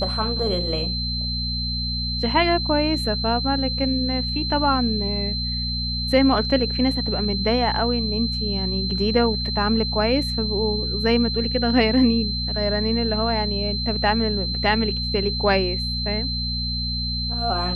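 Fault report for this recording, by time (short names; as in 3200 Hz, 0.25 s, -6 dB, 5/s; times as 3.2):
hum 60 Hz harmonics 4 -28 dBFS
tone 4100 Hz -26 dBFS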